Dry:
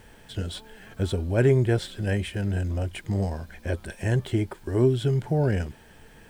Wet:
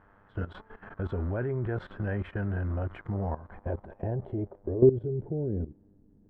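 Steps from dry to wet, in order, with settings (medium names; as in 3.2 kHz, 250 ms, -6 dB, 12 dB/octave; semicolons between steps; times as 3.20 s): mains buzz 100 Hz, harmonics 21, -54 dBFS -3 dB/octave; low-pass sweep 1.3 kHz -> 270 Hz, 2.98–6.06 s; level held to a coarse grid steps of 15 dB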